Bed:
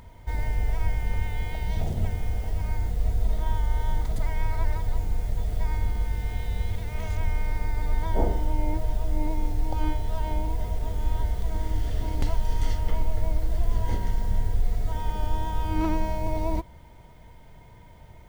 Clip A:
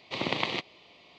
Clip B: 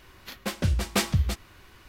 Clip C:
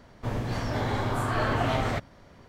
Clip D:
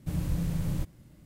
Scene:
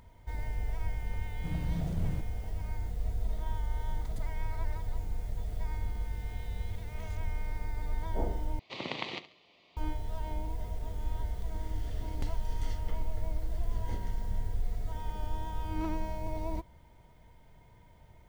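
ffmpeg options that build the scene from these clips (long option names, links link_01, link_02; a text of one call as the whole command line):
ffmpeg -i bed.wav -i cue0.wav -i cue1.wav -i cue2.wav -i cue3.wav -filter_complex "[0:a]volume=-8.5dB[link_01];[4:a]highshelf=frequency=4600:gain=-11.5[link_02];[1:a]aecho=1:1:70|140|210:0.188|0.0603|0.0193[link_03];[link_01]asplit=2[link_04][link_05];[link_04]atrim=end=8.594[link_06];[link_03]atrim=end=1.18,asetpts=PTS-STARTPTS,volume=-7.5dB[link_07];[link_05]atrim=start=9.766[link_08];[link_02]atrim=end=1.25,asetpts=PTS-STARTPTS,volume=-5dB,afade=type=in:duration=0.004:curve=hsin,afade=type=out:start_time=1.246:duration=0.004:curve=hsin,adelay=1370[link_09];[link_06][link_07]acrossfade=duration=0.004:curve1=hsin:curve2=hsin[link_10];[link_10][link_08]acrossfade=duration=0.004:curve1=hsin:curve2=hsin[link_11];[link_11][link_09]amix=inputs=2:normalize=0" out.wav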